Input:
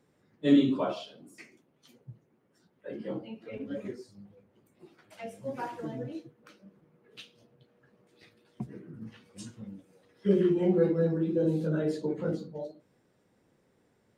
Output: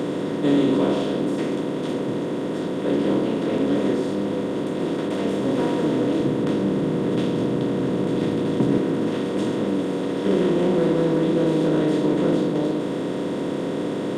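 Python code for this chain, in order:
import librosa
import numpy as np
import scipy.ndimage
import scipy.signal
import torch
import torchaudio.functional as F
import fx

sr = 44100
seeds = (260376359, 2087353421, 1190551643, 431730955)

p1 = fx.bin_compress(x, sr, power=0.2)
p2 = fx.peak_eq(p1, sr, hz=74.0, db=10.0, octaves=2.9, at=(6.2, 8.78))
p3 = 10.0 ** (-23.5 / 20.0) * np.tanh(p2 / 10.0 ** (-23.5 / 20.0))
p4 = p2 + (p3 * 10.0 ** (-7.0 / 20.0))
y = p4 * 10.0 ** (-2.5 / 20.0)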